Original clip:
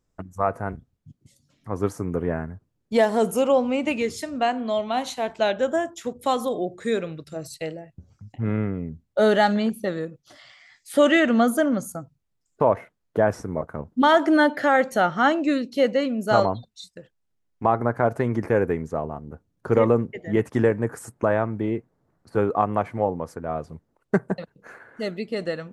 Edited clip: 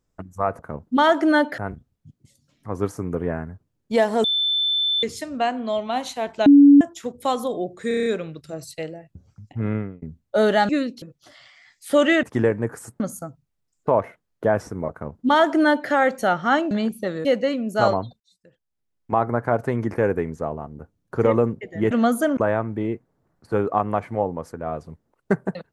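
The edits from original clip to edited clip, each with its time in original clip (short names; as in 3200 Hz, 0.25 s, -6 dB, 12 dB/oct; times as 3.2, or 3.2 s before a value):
3.25–4.04 bleep 3530 Hz -18.5 dBFS
5.47–5.82 bleep 284 Hz -6.5 dBFS
6.89 stutter 0.03 s, 7 plays
8.58–8.85 fade out
9.52–10.06 swap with 15.44–15.77
11.27–11.73 swap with 20.43–21.2
13.64–14.63 copy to 0.59
16.72–17.7 fade in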